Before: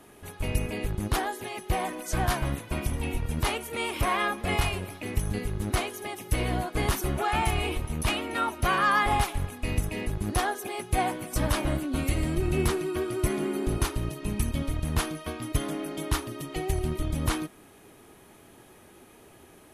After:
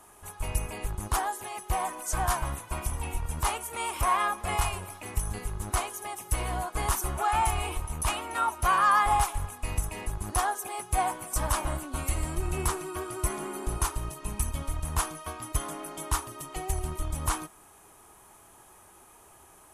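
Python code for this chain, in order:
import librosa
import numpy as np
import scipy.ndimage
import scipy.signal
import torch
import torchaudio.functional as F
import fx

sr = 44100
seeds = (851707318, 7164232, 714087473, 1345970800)

y = fx.graphic_eq(x, sr, hz=(125, 250, 500, 1000, 2000, 4000, 8000), db=(-6, -10, -6, 7, -5, -6, 7))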